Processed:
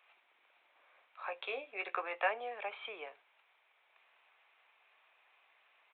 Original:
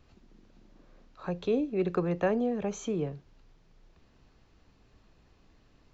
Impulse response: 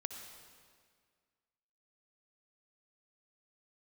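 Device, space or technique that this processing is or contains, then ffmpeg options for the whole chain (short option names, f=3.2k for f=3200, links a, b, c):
musical greeting card: -filter_complex "[0:a]asettb=1/sr,asplit=3[a][b][c];[a]atrim=end=1.244[d];[b]atrim=start=1.24:end=2.29,asetpts=PTS-STARTPTS,afade=t=in:d=0.004:c=qsin,afade=t=out:st=1.046:d=0.004:c=qsin,asplit=2[e][f];[f]adelay=15,volume=-7dB[g];[e][g]amix=inputs=2:normalize=0,atrim=end_sample=46305[h];[c]atrim=start=2.286[i];[d][h]acrossfade=d=0.004:c1=hsin:c2=qsin[j];[j][i]acrossfade=d=0.004:c1=qsin:c2=hsin,aresample=8000,aresample=44100,highpass=f=720:w=0.5412,highpass=f=720:w=1.3066,equalizer=f=2.3k:t=o:w=0.34:g=9.5,volume=1dB"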